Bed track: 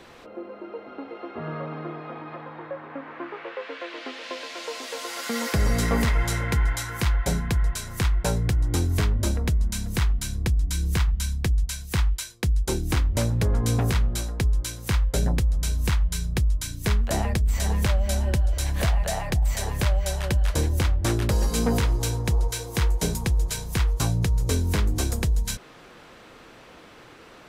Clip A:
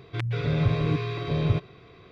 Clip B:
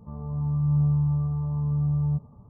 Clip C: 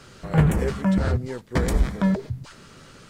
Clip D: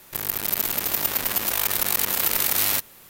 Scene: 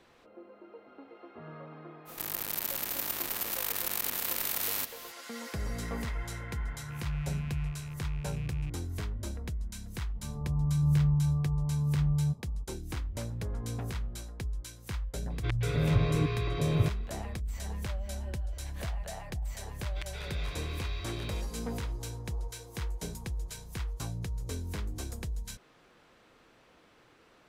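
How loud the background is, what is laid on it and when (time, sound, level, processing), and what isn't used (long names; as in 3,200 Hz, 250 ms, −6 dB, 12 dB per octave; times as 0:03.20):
bed track −13.5 dB
0:02.05: mix in D −13 dB, fades 0.05 s + compressor on every frequency bin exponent 0.6
0:06.52: mix in B −13.5 dB + loose part that buzzes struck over −23 dBFS, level −27 dBFS
0:10.15: mix in B −3.5 dB
0:15.30: mix in A −3 dB
0:19.82: mix in A −12 dB + spectral tilt +4.5 dB per octave
not used: C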